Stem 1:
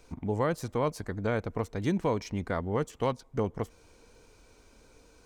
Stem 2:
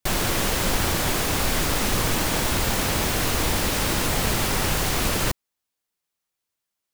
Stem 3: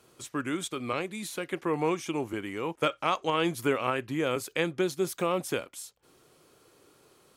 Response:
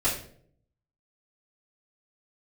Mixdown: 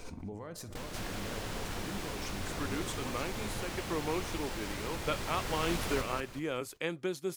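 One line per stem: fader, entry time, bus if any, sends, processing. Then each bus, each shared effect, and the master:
−8.5 dB, 0.00 s, bus A, send −20.5 dB, echo send −21 dB, brickwall limiter −26.5 dBFS, peak gain reduction 11 dB; background raised ahead of every attack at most 35 dB per second
−2.0 dB, 0.70 s, bus A, no send, echo send −15 dB, high-shelf EQ 9,500 Hz −10.5 dB; automatic ducking −19 dB, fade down 1.10 s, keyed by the first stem
−7.0 dB, 2.25 s, no bus, no send, no echo send, no processing
bus A: 0.0 dB, downward compressor 2.5 to 1, threshold −39 dBFS, peak gain reduction 11.5 dB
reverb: on, RT60 0.60 s, pre-delay 3 ms
echo: repeating echo 189 ms, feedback 33%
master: no processing

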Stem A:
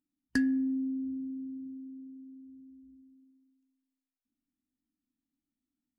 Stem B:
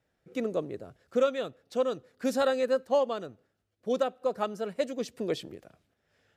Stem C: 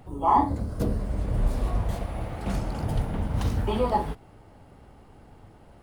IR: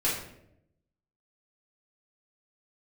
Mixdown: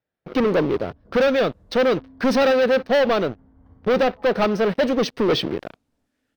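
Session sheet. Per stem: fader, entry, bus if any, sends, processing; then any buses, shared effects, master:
−18.0 dB, 1.50 s, no send, upward compression, threshold −35 dBFS
+1.5 dB, 0.00 s, no send, low-shelf EQ 63 Hz −9 dB; leveller curve on the samples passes 5; Savitzky-Golay smoothing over 15 samples
−19.0 dB, 0.25 s, send −20.5 dB, Savitzky-Golay smoothing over 41 samples; automatic ducking −14 dB, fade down 1.40 s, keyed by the second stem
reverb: on, RT60 0.75 s, pre-delay 4 ms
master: linearly interpolated sample-rate reduction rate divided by 2×

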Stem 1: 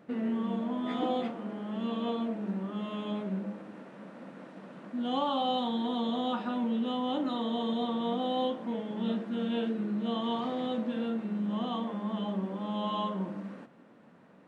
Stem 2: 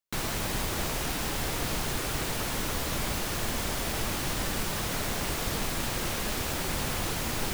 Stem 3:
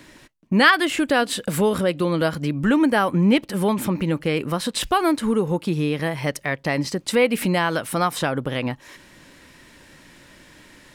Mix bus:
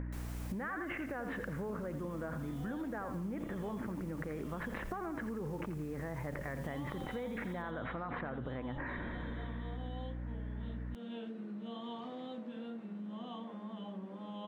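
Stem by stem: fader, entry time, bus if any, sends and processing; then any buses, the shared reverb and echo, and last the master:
−9.5 dB, 1.60 s, no bus, no send, no echo send, tape wow and flutter 25 cents
−10.5 dB, 0.00 s, bus A, no send, echo send −13.5 dB, parametric band 3,900 Hz −6 dB 1.2 octaves
−0.5 dB, 0.00 s, bus A, no send, echo send −20.5 dB, Butterworth low-pass 1,900 Hz 36 dB per octave; level that may fall only so fast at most 22 dB per second
bus A: 0.0 dB, mains hum 60 Hz, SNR 12 dB; downward compressor, threshold −27 dBFS, peak gain reduction 15.5 dB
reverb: not used
echo: repeating echo 85 ms, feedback 38%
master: downward compressor 3 to 1, threshold −41 dBFS, peak gain reduction 12.5 dB

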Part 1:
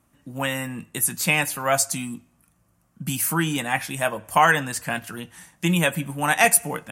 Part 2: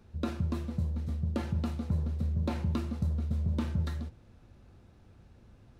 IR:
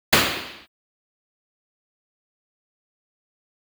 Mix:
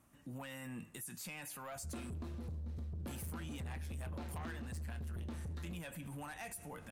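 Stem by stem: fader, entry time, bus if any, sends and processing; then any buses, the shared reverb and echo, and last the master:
−4.0 dB, 0.00 s, no send, downward compressor 3 to 1, threshold −32 dBFS, peak gain reduction 15 dB
+1.5 dB, 1.70 s, no send, no processing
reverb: not used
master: soft clipping −29 dBFS, distortion −11 dB; brickwall limiter −39.5 dBFS, peak gain reduction 10.5 dB

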